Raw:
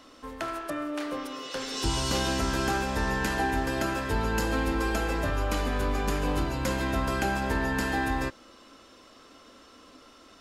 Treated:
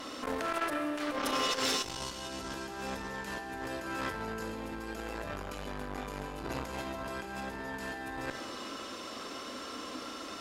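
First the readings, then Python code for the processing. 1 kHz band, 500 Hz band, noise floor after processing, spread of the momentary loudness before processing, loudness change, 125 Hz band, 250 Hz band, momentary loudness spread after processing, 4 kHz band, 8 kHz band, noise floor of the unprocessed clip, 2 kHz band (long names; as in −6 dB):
−6.5 dB, −6.5 dB, −43 dBFS, 7 LU, −8.0 dB, −14.5 dB, −8.5 dB, 10 LU, −2.5 dB, −4.5 dB, −54 dBFS, −7.5 dB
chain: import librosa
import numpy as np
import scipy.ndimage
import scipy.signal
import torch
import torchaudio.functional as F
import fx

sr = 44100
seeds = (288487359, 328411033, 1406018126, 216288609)

y = fx.highpass(x, sr, hz=140.0, slope=6)
y = fx.over_compress(y, sr, threshold_db=-36.0, ratio=-0.5)
y = fx.vibrato(y, sr, rate_hz=0.44, depth_cents=5.2)
y = fx.cheby_harmonics(y, sr, harmonics=(4, 5), levels_db=(-16, -20), full_scale_db=-18.5)
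y = fx.rev_schroeder(y, sr, rt60_s=1.5, comb_ms=28, drr_db=7.5)
y = fx.transformer_sat(y, sr, knee_hz=1100.0)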